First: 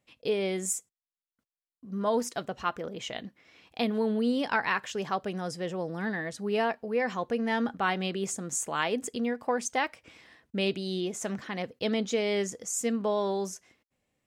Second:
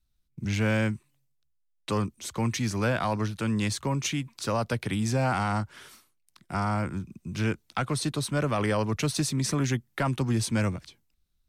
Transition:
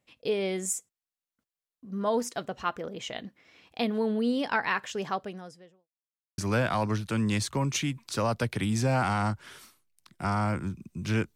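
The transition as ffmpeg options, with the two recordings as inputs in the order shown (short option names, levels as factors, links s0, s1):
-filter_complex "[0:a]apad=whole_dur=11.35,atrim=end=11.35,asplit=2[s0][s1];[s0]atrim=end=5.89,asetpts=PTS-STARTPTS,afade=t=out:st=5.11:d=0.78:c=qua[s2];[s1]atrim=start=5.89:end=6.38,asetpts=PTS-STARTPTS,volume=0[s3];[1:a]atrim=start=2.68:end=7.65,asetpts=PTS-STARTPTS,afade=t=in:d=0.004:c=hsin[s4];[s2][s3][s4]concat=n=3:v=0:a=1"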